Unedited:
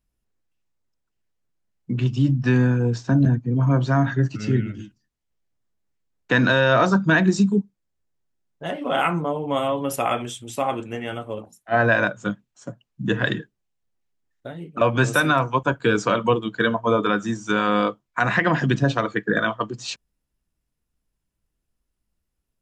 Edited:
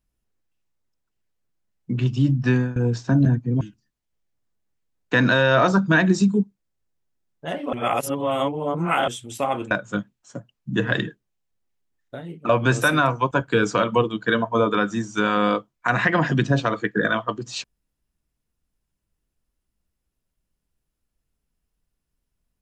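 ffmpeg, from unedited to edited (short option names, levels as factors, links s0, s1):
-filter_complex "[0:a]asplit=6[s0][s1][s2][s3][s4][s5];[s0]atrim=end=2.76,asetpts=PTS-STARTPTS,afade=t=out:st=2.51:d=0.25:silence=0.105925[s6];[s1]atrim=start=2.76:end=3.612,asetpts=PTS-STARTPTS,afade=t=in:d=0.004:c=hsin:silence=0.105925[s7];[s2]atrim=start=4.788:end=8.912[s8];[s3]atrim=start=8.908:end=10.262,asetpts=PTS-STARTPTS,areverse[s9];[s4]atrim=start=10.258:end=10.892[s10];[s5]atrim=start=12.028[s11];[s6][s7]concat=n=2:v=0:a=1[s12];[s12][s8]acrossfade=d=0.004:c1=hsin:c2=hsin[s13];[s13][s9]acrossfade=d=0.004:c1=hsin:c2=hsin[s14];[s14][s10]acrossfade=d=0.004:c1=hsin:c2=hsin[s15];[s15][s11]acrossfade=d=0.004:c1=hsin:c2=hsin"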